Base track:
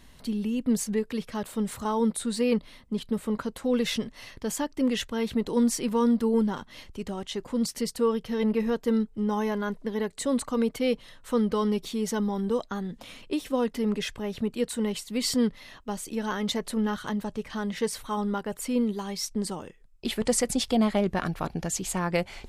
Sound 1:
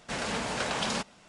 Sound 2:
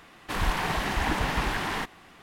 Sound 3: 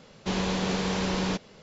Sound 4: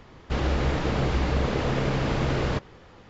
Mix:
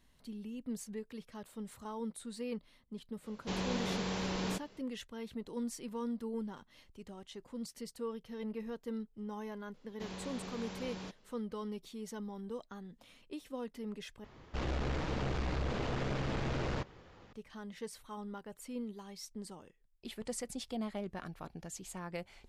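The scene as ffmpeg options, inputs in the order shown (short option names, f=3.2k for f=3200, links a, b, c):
-filter_complex "[3:a]asplit=2[a][b];[0:a]volume=-15.5dB[c];[4:a]aeval=exprs='(tanh(17.8*val(0)+0.45)-tanh(0.45))/17.8':c=same[d];[c]asplit=2[e][f];[e]atrim=end=14.244[g];[d]atrim=end=3.09,asetpts=PTS-STARTPTS,volume=-6dB[h];[f]atrim=start=17.326[i];[a]atrim=end=1.62,asetpts=PTS-STARTPTS,volume=-8.5dB,afade=t=in:d=0.05,afade=t=out:st=1.57:d=0.05,adelay=141561S[j];[b]atrim=end=1.62,asetpts=PTS-STARTPTS,volume=-17dB,afade=t=in:d=0.004:c=hsin,afade=t=out:st=1.616:d=0.004:c=hsin,adelay=9740[k];[g][h]acrossfade=d=0.004:c1=hsin:c2=hsin[l];[l][i]acrossfade=d=0.004:c1=hsin:c2=hsin[m];[m][j][k]amix=inputs=3:normalize=0"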